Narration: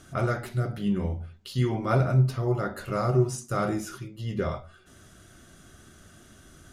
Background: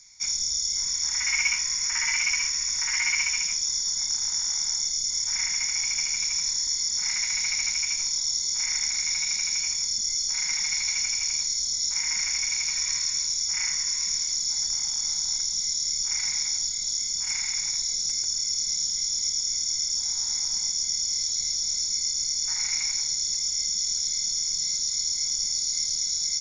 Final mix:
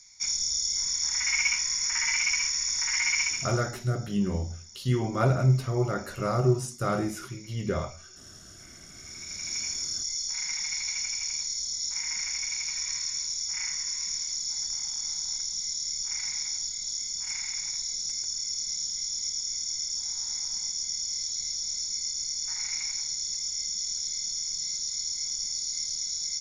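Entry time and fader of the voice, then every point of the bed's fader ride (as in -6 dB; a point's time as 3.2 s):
3.30 s, -0.5 dB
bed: 3.26 s -1.5 dB
3.88 s -23.5 dB
8.87 s -23.5 dB
9.57 s -5 dB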